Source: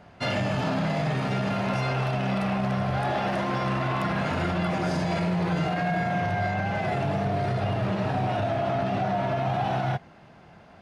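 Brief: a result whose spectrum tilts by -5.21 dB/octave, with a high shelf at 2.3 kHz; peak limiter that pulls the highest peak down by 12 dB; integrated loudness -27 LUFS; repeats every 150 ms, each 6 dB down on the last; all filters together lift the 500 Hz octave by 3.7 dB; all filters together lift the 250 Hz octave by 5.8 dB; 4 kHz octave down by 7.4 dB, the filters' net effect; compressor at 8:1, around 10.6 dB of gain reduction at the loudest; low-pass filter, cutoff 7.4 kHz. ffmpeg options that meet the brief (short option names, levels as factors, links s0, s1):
-af "lowpass=7400,equalizer=f=250:t=o:g=8,equalizer=f=500:t=o:g=4,highshelf=f=2300:g=-4,equalizer=f=4000:t=o:g=-6.5,acompressor=threshold=0.0316:ratio=8,alimiter=level_in=2.82:limit=0.0631:level=0:latency=1,volume=0.355,aecho=1:1:150|300|450|600|750|900:0.501|0.251|0.125|0.0626|0.0313|0.0157,volume=4.73"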